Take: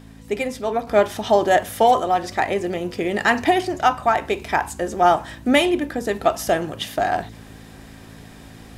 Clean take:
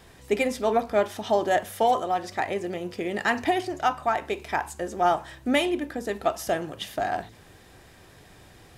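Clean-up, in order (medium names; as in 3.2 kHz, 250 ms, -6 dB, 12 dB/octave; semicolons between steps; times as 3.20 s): de-hum 54.5 Hz, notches 5; gain correction -6.5 dB, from 0.87 s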